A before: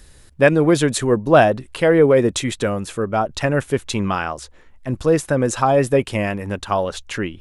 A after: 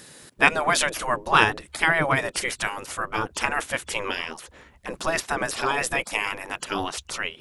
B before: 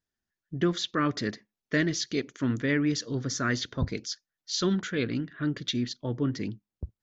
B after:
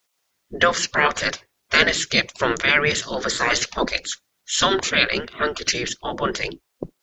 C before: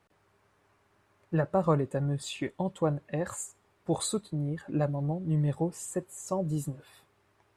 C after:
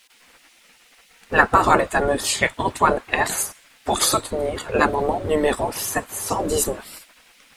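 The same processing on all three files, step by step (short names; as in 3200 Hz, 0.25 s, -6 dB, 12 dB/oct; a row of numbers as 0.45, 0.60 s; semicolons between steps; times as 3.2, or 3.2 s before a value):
spectral gate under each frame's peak -15 dB weak; normalise peaks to -1.5 dBFS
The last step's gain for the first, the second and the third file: +6.0, +20.5, +25.0 dB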